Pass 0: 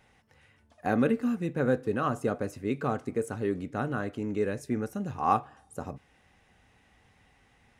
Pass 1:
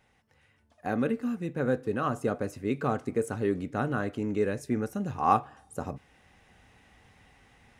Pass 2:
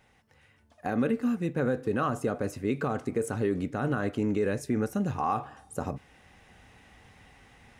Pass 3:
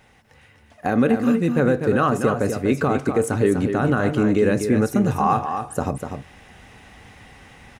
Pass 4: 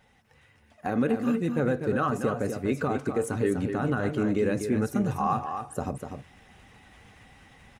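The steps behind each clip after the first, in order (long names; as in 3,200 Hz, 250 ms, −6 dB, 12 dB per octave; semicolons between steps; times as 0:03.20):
speech leveller within 4 dB 2 s
brickwall limiter −21.5 dBFS, peak gain reduction 11.5 dB; level +3.5 dB
single-tap delay 246 ms −7 dB; level +9 dB
spectral magnitudes quantised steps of 15 dB; level −7 dB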